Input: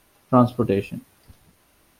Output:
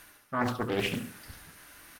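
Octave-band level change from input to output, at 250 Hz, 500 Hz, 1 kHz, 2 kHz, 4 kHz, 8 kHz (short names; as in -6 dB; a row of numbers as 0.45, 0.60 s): -12.5 dB, -11.0 dB, -9.5 dB, +6.0 dB, +6.5 dB, n/a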